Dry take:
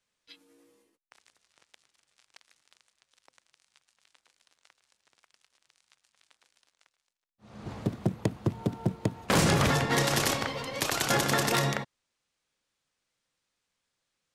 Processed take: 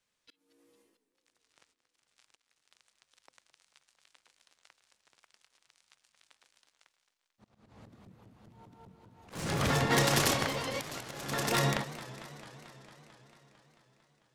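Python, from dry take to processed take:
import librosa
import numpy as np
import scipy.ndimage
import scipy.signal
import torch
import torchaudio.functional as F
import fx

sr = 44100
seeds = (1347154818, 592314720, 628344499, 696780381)

y = np.minimum(x, 2.0 * 10.0 ** (-19.5 / 20.0) - x)
y = fx.auto_swell(y, sr, attack_ms=565.0)
y = fx.echo_warbled(y, sr, ms=223, feedback_pct=73, rate_hz=2.8, cents=217, wet_db=-16.0)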